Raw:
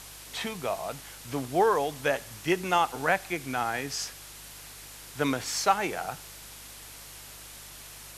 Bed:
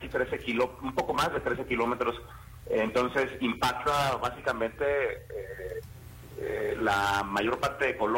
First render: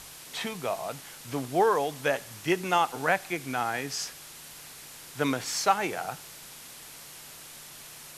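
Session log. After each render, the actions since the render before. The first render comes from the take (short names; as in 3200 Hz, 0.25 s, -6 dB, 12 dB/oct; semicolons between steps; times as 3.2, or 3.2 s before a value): de-hum 50 Hz, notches 2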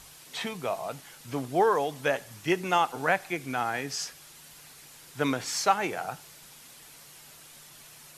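denoiser 6 dB, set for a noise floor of -47 dBFS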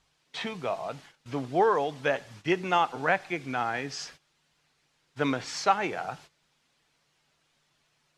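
LPF 4900 Hz 12 dB/oct; gate -48 dBFS, range -17 dB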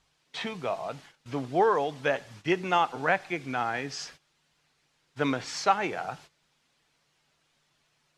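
nothing audible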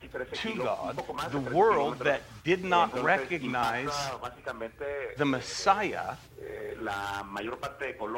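add bed -7.5 dB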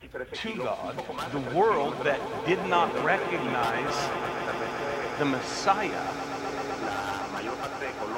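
swelling echo 0.128 s, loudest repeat 8, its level -15.5 dB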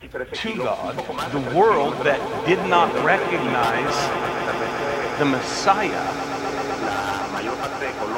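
gain +7 dB; limiter -3 dBFS, peak gain reduction 1 dB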